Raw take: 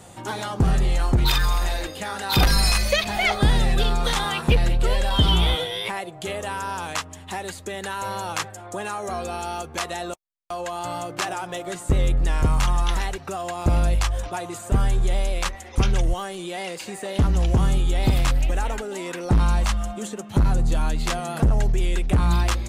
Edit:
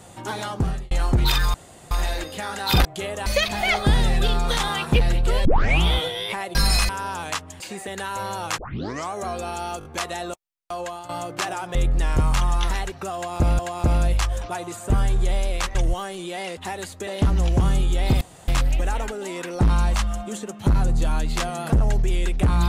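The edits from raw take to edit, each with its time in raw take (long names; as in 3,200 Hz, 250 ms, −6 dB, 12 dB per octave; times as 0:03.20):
0:00.49–0:00.91: fade out
0:01.54: splice in room tone 0.37 s
0:02.48–0:02.82: swap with 0:06.11–0:06.52
0:05.01: tape start 0.38 s
0:07.23–0:07.73: swap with 0:16.77–0:17.04
0:08.44: tape start 0.56 s
0:09.65: stutter 0.02 s, 4 plays
0:10.63–0:10.89: fade out, to −13.5 dB
0:11.55–0:12.01: remove
0:13.41–0:13.85: repeat, 2 plays
0:15.57–0:15.95: remove
0:18.18: splice in room tone 0.27 s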